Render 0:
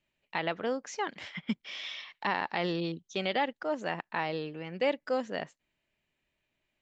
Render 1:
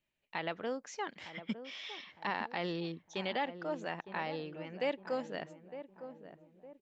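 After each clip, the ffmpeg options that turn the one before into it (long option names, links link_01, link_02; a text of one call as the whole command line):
ffmpeg -i in.wav -filter_complex "[0:a]asplit=2[link_01][link_02];[link_02]adelay=909,lowpass=frequency=840:poles=1,volume=-10dB,asplit=2[link_03][link_04];[link_04]adelay=909,lowpass=frequency=840:poles=1,volume=0.48,asplit=2[link_05][link_06];[link_06]adelay=909,lowpass=frequency=840:poles=1,volume=0.48,asplit=2[link_07][link_08];[link_08]adelay=909,lowpass=frequency=840:poles=1,volume=0.48,asplit=2[link_09][link_10];[link_10]adelay=909,lowpass=frequency=840:poles=1,volume=0.48[link_11];[link_01][link_03][link_05][link_07][link_09][link_11]amix=inputs=6:normalize=0,volume=-5.5dB" out.wav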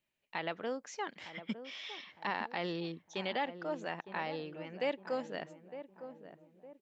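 ffmpeg -i in.wav -af "lowshelf=frequency=75:gain=-8.5" out.wav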